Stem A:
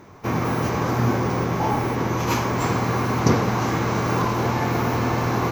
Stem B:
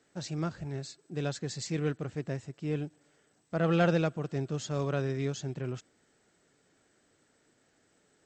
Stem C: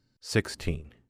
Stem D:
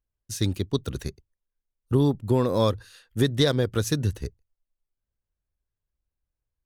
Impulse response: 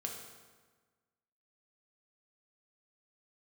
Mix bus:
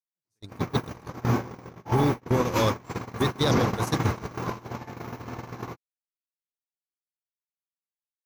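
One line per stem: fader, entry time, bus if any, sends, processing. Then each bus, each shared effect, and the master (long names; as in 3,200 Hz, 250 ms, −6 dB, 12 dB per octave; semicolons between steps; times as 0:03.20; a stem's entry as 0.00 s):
+3.0 dB, 0.25 s, no send, no processing
−11.5 dB, 0.00 s, no send, no processing
−8.5 dB, 0.00 s, no send, no processing
+3.0 dB, 0.00 s, no send, high-shelf EQ 4,300 Hz +4 dB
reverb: not used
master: noise gate −15 dBFS, range −54 dB; brickwall limiter −13 dBFS, peak gain reduction 11 dB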